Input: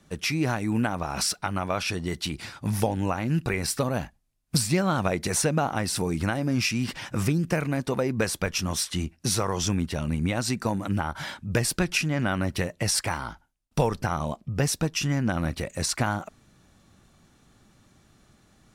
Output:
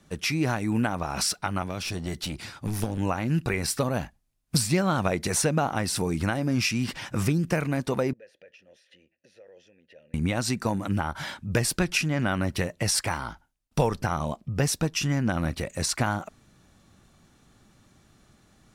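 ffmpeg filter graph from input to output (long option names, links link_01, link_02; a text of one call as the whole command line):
ffmpeg -i in.wav -filter_complex "[0:a]asettb=1/sr,asplit=3[link_01][link_02][link_03];[link_01]atrim=end=1.624[link_04];[link_02]atrim=start=1.62:end=2.98,asetpts=PTS-STARTPTS,afade=type=in:duration=0.004:curve=qsin,afade=type=out:start_time=1.356:duration=0.004:curve=qsin,acrossover=split=410|3000[link_05][link_06][link_07];[link_06]acompressor=threshold=-41dB:ratio=2.5:attack=3.2:release=140:knee=2.83:detection=peak[link_08];[link_05][link_08][link_07]amix=inputs=3:normalize=0,aeval=exprs='clip(val(0),-1,0.0335)':channel_layout=same[link_09];[link_03]atrim=start=2.976[link_10];[link_04][link_09]acrossfade=duration=0.004:curve1=hsin:curve2=qsin[link_11];[link_11][link_10]acrossfade=duration=0.004:curve1=qsin:curve2=hsin,asettb=1/sr,asplit=3[link_12][link_13][link_14];[link_12]atrim=end=8.134[link_15];[link_13]atrim=start=8.13:end=10.14,asetpts=PTS-STARTPTS,afade=type=in:duration=0.004:curve=qsin,afade=type=out:start_time=2.006:duration=0.004:curve=qsin,bandreject=frequency=7900:width=6.7,acompressor=threshold=-35dB:ratio=12:attack=3.2:release=140:knee=1:detection=peak,asplit=3[link_16][link_17][link_18];[link_16]bandpass=frequency=530:width_type=q:width=8,volume=0dB[link_19];[link_17]bandpass=frequency=1840:width_type=q:width=8,volume=-6dB[link_20];[link_18]bandpass=frequency=2480:width_type=q:width=8,volume=-9dB[link_21];[link_19][link_20][link_21]amix=inputs=3:normalize=0[link_22];[link_14]atrim=start=10.136[link_23];[link_15][link_22]acrossfade=duration=0.004:curve1=hsin:curve2=qsin[link_24];[link_24][link_23]acrossfade=duration=0.004:curve1=qsin:curve2=hsin" out.wav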